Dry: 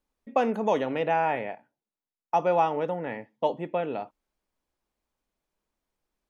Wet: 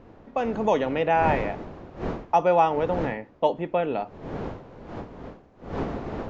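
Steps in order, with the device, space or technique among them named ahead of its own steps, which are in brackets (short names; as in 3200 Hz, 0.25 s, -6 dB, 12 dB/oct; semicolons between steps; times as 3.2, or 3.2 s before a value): smartphone video outdoors (wind noise 520 Hz -39 dBFS; AGC gain up to 13 dB; gain -6.5 dB; AAC 64 kbps 16000 Hz)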